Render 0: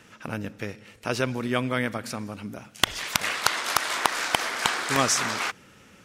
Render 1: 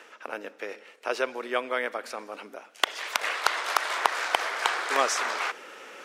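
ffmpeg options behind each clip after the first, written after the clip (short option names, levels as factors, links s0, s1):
-af "highpass=f=400:w=0.5412,highpass=f=400:w=1.3066,highshelf=f=3800:g=-10.5,areverse,acompressor=mode=upward:threshold=0.02:ratio=2.5,areverse,volume=1.12"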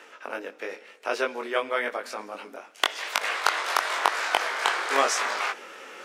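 -af "flanger=delay=19.5:depth=2.8:speed=0.93,volume=1.68"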